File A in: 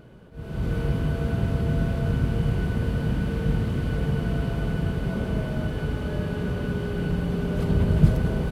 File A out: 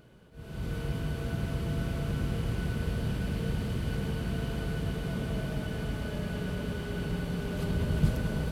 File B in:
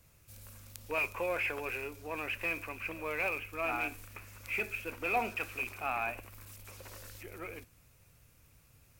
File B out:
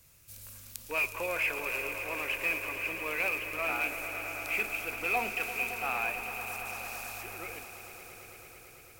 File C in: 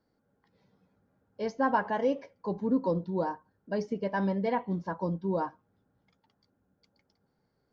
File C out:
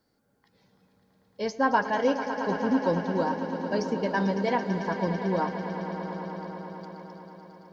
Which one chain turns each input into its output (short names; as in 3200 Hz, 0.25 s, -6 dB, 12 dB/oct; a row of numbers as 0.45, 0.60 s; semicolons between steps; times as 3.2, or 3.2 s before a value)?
high shelf 2200 Hz +9 dB; on a send: swelling echo 0.111 s, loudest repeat 5, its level -13 dB; on the sum: normalise peaks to -12 dBFS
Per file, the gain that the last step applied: -8.5, -2.0, +2.0 dB